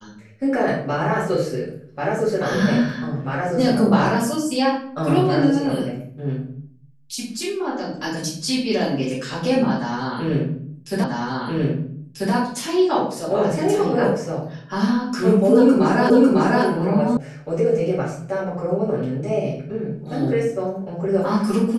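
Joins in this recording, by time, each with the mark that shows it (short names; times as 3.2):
11.04 repeat of the last 1.29 s
16.1 repeat of the last 0.55 s
17.17 sound cut off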